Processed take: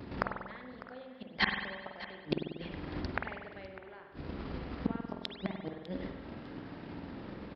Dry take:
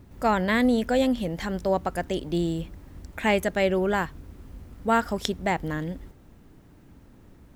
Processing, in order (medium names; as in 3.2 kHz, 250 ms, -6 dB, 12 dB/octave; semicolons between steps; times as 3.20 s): vibrato 0.42 Hz 11 cents; in parallel at -2 dB: compression 6:1, threshold -33 dBFS, peak gain reduction 15 dB; on the sum: resampled via 11.025 kHz; transient shaper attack +6 dB, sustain -4 dB; inverted gate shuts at -17 dBFS, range -35 dB; high-pass 300 Hz 6 dB/octave; on a send: feedback delay 601 ms, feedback 28%, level -16 dB; on the sum: spring tank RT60 1.3 s, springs 47 ms, chirp 55 ms, DRR 2.5 dB; trim +5.5 dB